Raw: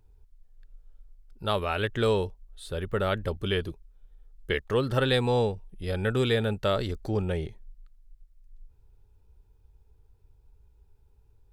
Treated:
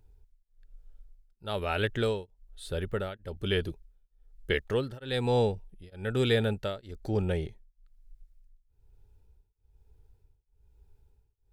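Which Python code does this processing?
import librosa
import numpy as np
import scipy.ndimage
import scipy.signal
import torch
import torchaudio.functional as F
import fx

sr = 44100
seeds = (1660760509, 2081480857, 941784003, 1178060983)

y = fx.peak_eq(x, sr, hz=1100.0, db=-8.0, octaves=0.26)
y = y * np.abs(np.cos(np.pi * 1.1 * np.arange(len(y)) / sr))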